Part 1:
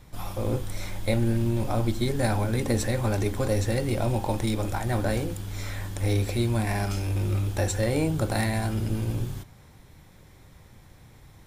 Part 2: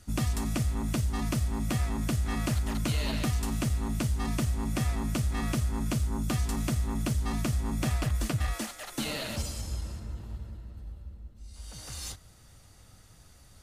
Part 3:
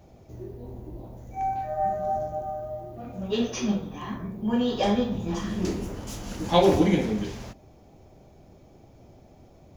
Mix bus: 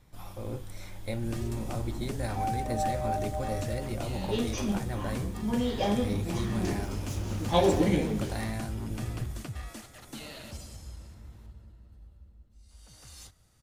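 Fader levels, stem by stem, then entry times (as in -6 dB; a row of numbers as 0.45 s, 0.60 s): -9.5 dB, -9.5 dB, -4.5 dB; 0.00 s, 1.15 s, 1.00 s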